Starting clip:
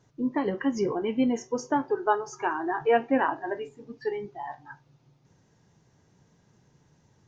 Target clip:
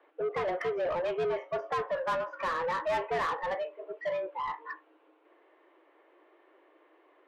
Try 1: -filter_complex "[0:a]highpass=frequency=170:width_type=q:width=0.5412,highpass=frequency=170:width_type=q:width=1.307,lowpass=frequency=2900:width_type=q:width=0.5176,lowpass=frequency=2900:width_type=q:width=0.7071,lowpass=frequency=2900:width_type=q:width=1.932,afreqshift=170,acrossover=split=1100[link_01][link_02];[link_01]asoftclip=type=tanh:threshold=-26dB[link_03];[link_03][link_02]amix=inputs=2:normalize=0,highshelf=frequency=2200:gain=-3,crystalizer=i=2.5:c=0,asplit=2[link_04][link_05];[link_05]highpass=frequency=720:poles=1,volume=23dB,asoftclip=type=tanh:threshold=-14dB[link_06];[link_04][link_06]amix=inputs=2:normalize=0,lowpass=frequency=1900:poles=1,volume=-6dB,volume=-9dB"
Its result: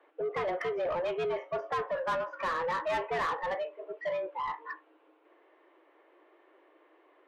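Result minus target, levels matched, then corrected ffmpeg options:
soft clipping: distortion +10 dB
-filter_complex "[0:a]highpass=frequency=170:width_type=q:width=0.5412,highpass=frequency=170:width_type=q:width=1.307,lowpass=frequency=2900:width_type=q:width=0.5176,lowpass=frequency=2900:width_type=q:width=0.7071,lowpass=frequency=2900:width_type=q:width=1.932,afreqshift=170,acrossover=split=1100[link_01][link_02];[link_01]asoftclip=type=tanh:threshold=-17.5dB[link_03];[link_03][link_02]amix=inputs=2:normalize=0,highshelf=frequency=2200:gain=-3,crystalizer=i=2.5:c=0,asplit=2[link_04][link_05];[link_05]highpass=frequency=720:poles=1,volume=23dB,asoftclip=type=tanh:threshold=-14dB[link_06];[link_04][link_06]amix=inputs=2:normalize=0,lowpass=frequency=1900:poles=1,volume=-6dB,volume=-9dB"

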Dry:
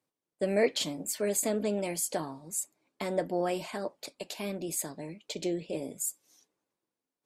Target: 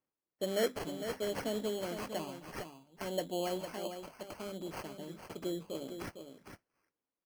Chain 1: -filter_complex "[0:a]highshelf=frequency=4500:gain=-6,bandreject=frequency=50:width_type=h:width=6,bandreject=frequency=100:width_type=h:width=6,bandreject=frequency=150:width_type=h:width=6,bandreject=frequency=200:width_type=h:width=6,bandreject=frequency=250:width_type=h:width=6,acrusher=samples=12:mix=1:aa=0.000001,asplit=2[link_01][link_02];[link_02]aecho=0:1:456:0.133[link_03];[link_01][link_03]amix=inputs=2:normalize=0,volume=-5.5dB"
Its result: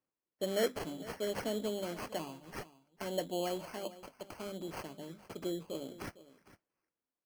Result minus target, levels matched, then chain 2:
echo-to-direct −9 dB
-filter_complex "[0:a]highshelf=frequency=4500:gain=-6,bandreject=frequency=50:width_type=h:width=6,bandreject=frequency=100:width_type=h:width=6,bandreject=frequency=150:width_type=h:width=6,bandreject=frequency=200:width_type=h:width=6,bandreject=frequency=250:width_type=h:width=6,acrusher=samples=12:mix=1:aa=0.000001,asplit=2[link_01][link_02];[link_02]aecho=0:1:456:0.376[link_03];[link_01][link_03]amix=inputs=2:normalize=0,volume=-5.5dB"

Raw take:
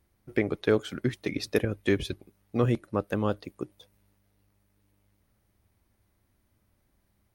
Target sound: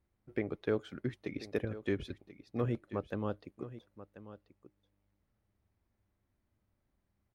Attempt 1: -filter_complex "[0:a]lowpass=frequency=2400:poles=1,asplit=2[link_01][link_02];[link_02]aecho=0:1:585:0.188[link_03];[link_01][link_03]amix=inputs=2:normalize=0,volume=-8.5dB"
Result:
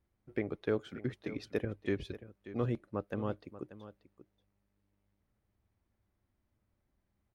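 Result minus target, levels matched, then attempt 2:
echo 451 ms early
-filter_complex "[0:a]lowpass=frequency=2400:poles=1,asplit=2[link_01][link_02];[link_02]aecho=0:1:1036:0.188[link_03];[link_01][link_03]amix=inputs=2:normalize=0,volume=-8.5dB"

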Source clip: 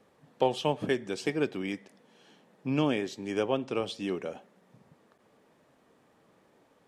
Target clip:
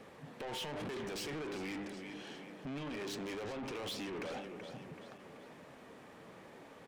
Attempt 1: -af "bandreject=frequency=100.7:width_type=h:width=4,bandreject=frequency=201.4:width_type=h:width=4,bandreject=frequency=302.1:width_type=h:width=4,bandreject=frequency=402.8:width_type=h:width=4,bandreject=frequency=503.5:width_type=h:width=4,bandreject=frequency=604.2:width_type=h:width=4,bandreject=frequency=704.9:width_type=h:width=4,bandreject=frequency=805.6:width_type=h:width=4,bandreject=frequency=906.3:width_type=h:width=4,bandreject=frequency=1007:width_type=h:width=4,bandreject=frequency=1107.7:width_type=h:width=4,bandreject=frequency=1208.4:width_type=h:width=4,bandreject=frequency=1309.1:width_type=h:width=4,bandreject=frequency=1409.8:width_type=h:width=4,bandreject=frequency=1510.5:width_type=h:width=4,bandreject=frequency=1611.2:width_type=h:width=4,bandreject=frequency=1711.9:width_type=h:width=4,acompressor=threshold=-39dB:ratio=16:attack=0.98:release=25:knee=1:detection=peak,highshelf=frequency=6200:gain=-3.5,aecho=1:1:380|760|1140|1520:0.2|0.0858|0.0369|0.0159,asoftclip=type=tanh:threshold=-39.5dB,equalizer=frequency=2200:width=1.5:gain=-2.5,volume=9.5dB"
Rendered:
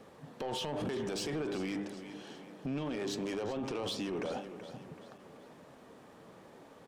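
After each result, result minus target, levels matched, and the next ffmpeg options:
soft clipping: distortion −9 dB; 2,000 Hz band −5.0 dB
-af "bandreject=frequency=100.7:width_type=h:width=4,bandreject=frequency=201.4:width_type=h:width=4,bandreject=frequency=302.1:width_type=h:width=4,bandreject=frequency=402.8:width_type=h:width=4,bandreject=frequency=503.5:width_type=h:width=4,bandreject=frequency=604.2:width_type=h:width=4,bandreject=frequency=704.9:width_type=h:width=4,bandreject=frequency=805.6:width_type=h:width=4,bandreject=frequency=906.3:width_type=h:width=4,bandreject=frequency=1007:width_type=h:width=4,bandreject=frequency=1107.7:width_type=h:width=4,bandreject=frequency=1208.4:width_type=h:width=4,bandreject=frequency=1309.1:width_type=h:width=4,bandreject=frequency=1409.8:width_type=h:width=4,bandreject=frequency=1510.5:width_type=h:width=4,bandreject=frequency=1611.2:width_type=h:width=4,bandreject=frequency=1711.9:width_type=h:width=4,acompressor=threshold=-39dB:ratio=16:attack=0.98:release=25:knee=1:detection=peak,highshelf=frequency=6200:gain=-3.5,aecho=1:1:380|760|1140|1520:0.2|0.0858|0.0369|0.0159,asoftclip=type=tanh:threshold=-49dB,equalizer=frequency=2200:width=1.5:gain=-2.5,volume=9.5dB"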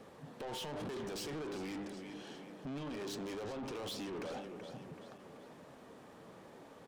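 2,000 Hz band −3.5 dB
-af "bandreject=frequency=100.7:width_type=h:width=4,bandreject=frequency=201.4:width_type=h:width=4,bandreject=frequency=302.1:width_type=h:width=4,bandreject=frequency=402.8:width_type=h:width=4,bandreject=frequency=503.5:width_type=h:width=4,bandreject=frequency=604.2:width_type=h:width=4,bandreject=frequency=704.9:width_type=h:width=4,bandreject=frequency=805.6:width_type=h:width=4,bandreject=frequency=906.3:width_type=h:width=4,bandreject=frequency=1007:width_type=h:width=4,bandreject=frequency=1107.7:width_type=h:width=4,bandreject=frequency=1208.4:width_type=h:width=4,bandreject=frequency=1309.1:width_type=h:width=4,bandreject=frequency=1409.8:width_type=h:width=4,bandreject=frequency=1510.5:width_type=h:width=4,bandreject=frequency=1611.2:width_type=h:width=4,bandreject=frequency=1711.9:width_type=h:width=4,acompressor=threshold=-39dB:ratio=16:attack=0.98:release=25:knee=1:detection=peak,highshelf=frequency=6200:gain=-3.5,aecho=1:1:380|760|1140|1520:0.2|0.0858|0.0369|0.0159,asoftclip=type=tanh:threshold=-49dB,equalizer=frequency=2200:width=1.5:gain=3.5,volume=9.5dB"

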